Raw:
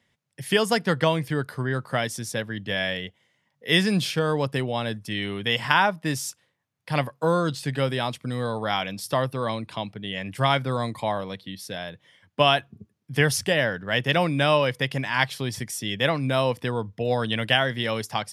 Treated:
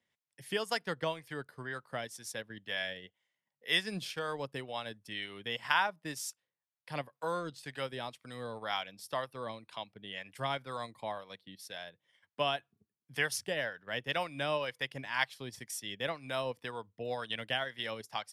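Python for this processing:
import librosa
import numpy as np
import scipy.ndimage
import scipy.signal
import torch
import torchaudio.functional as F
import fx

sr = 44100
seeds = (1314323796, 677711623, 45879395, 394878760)

y = fx.low_shelf(x, sr, hz=280.0, db=-11.5)
y = fx.transient(y, sr, attack_db=0, sustain_db=-7)
y = fx.harmonic_tremolo(y, sr, hz=2.0, depth_pct=50, crossover_hz=590.0)
y = y * librosa.db_to_amplitude(-7.5)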